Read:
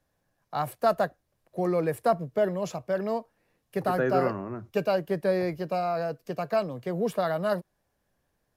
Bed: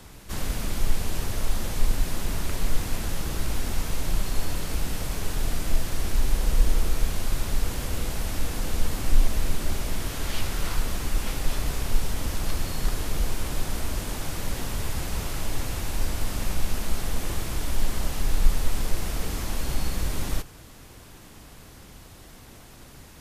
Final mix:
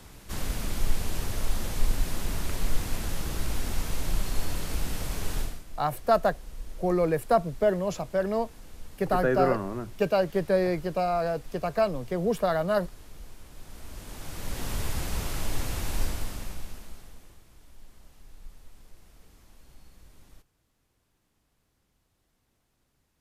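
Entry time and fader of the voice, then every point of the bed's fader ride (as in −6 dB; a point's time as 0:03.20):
5.25 s, +1.5 dB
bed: 0:05.40 −2.5 dB
0:05.65 −19.5 dB
0:13.51 −19.5 dB
0:14.71 −1.5 dB
0:16.02 −1.5 dB
0:17.43 −26.5 dB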